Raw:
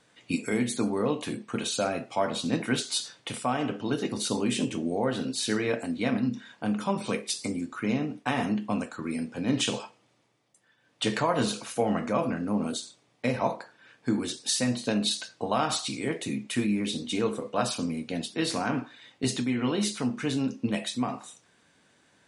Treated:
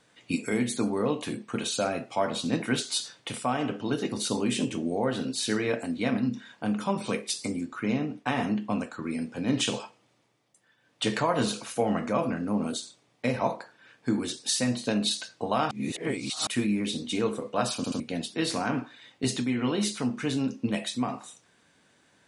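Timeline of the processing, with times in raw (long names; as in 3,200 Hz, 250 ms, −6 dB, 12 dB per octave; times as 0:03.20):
0:07.63–0:09.21: high-shelf EQ 10,000 Hz −10 dB
0:15.71–0:16.47: reverse
0:17.76: stutter in place 0.08 s, 3 plays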